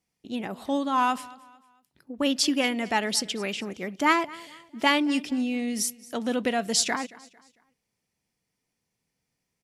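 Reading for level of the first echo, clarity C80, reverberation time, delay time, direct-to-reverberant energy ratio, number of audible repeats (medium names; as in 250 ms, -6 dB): -21.0 dB, no reverb, no reverb, 225 ms, no reverb, 2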